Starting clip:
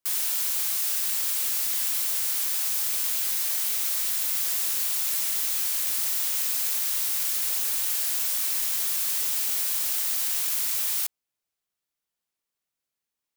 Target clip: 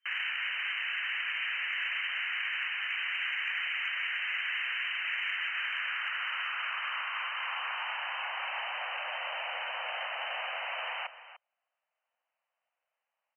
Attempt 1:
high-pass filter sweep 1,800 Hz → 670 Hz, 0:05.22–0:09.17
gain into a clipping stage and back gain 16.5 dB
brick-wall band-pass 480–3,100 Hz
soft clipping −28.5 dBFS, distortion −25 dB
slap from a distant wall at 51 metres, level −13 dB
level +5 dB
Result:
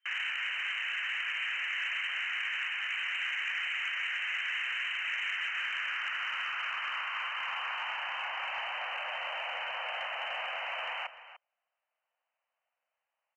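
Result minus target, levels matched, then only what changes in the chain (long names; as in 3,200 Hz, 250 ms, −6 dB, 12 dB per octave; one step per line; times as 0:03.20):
soft clipping: distortion +15 dB
change: soft clipping −20.5 dBFS, distortion −40 dB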